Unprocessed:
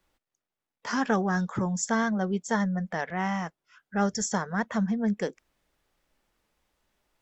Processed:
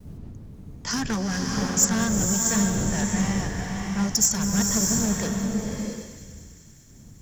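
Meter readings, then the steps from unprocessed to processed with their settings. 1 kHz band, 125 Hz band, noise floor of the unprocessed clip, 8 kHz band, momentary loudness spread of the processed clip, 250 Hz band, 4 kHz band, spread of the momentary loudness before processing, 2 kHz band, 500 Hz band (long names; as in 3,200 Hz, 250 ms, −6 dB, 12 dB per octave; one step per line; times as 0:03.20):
−3.0 dB, +5.5 dB, below −85 dBFS, can't be measured, 18 LU, +4.0 dB, +12.0 dB, 7 LU, 0.0 dB, −1.0 dB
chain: wind on the microphone 220 Hz −40 dBFS
noise gate with hold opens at −49 dBFS
bass and treble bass +11 dB, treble +9 dB
asymmetric clip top −21 dBFS, bottom −15 dBFS
high-shelf EQ 2,900 Hz +11 dB
mains-hum notches 60/120/180 Hz
delay with a high-pass on its return 196 ms, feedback 78%, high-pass 1,800 Hz, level −17 dB
slow-attack reverb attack 660 ms, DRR 0.5 dB
level −4 dB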